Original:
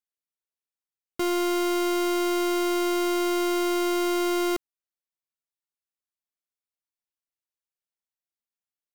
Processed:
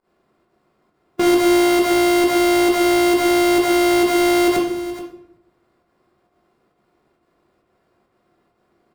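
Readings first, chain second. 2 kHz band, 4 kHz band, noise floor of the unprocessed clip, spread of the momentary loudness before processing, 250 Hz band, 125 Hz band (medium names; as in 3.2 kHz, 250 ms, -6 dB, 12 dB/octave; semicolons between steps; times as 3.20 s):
+11.0 dB, +8.5 dB, under -85 dBFS, 3 LU, +9.5 dB, no reading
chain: spectral levelling over time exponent 0.6; high-pass 72 Hz; level-controlled noise filter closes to 1.7 kHz, open at -22.5 dBFS; in parallel at -4 dB: sample-rate reducer 3.1 kHz, jitter 0%; on the sum: volume shaper 134 bpm, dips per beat 1, -24 dB, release 88 ms; on a send: delay 426 ms -14.5 dB; on the sum: simulated room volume 140 m³, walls mixed, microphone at 1.1 m; trim +4.5 dB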